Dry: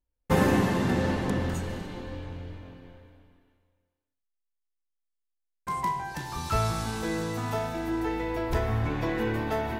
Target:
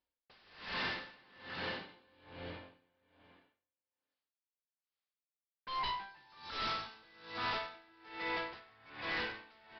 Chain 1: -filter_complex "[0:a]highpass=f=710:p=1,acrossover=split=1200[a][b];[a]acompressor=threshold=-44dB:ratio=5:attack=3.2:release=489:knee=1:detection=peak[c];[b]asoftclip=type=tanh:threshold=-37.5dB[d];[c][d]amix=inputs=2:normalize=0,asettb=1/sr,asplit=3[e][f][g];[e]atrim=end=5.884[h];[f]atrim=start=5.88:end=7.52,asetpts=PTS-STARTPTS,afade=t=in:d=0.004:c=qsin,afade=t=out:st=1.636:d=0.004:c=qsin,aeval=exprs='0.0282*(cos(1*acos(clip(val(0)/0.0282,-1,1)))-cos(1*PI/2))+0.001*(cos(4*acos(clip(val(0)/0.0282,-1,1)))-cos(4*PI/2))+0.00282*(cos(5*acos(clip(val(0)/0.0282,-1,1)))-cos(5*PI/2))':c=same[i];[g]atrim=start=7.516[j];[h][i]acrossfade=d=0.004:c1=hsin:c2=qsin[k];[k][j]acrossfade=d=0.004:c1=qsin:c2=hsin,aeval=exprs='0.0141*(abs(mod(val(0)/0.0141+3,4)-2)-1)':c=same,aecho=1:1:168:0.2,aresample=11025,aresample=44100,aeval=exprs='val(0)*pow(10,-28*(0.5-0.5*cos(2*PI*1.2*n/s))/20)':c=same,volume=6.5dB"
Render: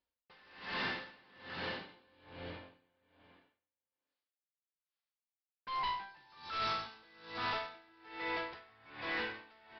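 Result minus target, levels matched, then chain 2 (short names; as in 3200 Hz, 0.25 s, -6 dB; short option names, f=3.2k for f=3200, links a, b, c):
soft clip: distortion +13 dB
-filter_complex "[0:a]highpass=f=710:p=1,acrossover=split=1200[a][b];[a]acompressor=threshold=-44dB:ratio=5:attack=3.2:release=489:knee=1:detection=peak[c];[b]asoftclip=type=tanh:threshold=-26.5dB[d];[c][d]amix=inputs=2:normalize=0,asettb=1/sr,asplit=3[e][f][g];[e]atrim=end=5.884[h];[f]atrim=start=5.88:end=7.52,asetpts=PTS-STARTPTS,afade=t=in:d=0.004:c=qsin,afade=t=out:st=1.636:d=0.004:c=qsin,aeval=exprs='0.0282*(cos(1*acos(clip(val(0)/0.0282,-1,1)))-cos(1*PI/2))+0.001*(cos(4*acos(clip(val(0)/0.0282,-1,1)))-cos(4*PI/2))+0.00282*(cos(5*acos(clip(val(0)/0.0282,-1,1)))-cos(5*PI/2))':c=same[i];[g]atrim=start=7.516[j];[h][i]acrossfade=d=0.004:c1=hsin:c2=qsin[k];[k][j]acrossfade=d=0.004:c1=qsin:c2=hsin,aeval=exprs='0.0141*(abs(mod(val(0)/0.0141+3,4)-2)-1)':c=same,aecho=1:1:168:0.2,aresample=11025,aresample=44100,aeval=exprs='val(0)*pow(10,-28*(0.5-0.5*cos(2*PI*1.2*n/s))/20)':c=same,volume=6.5dB"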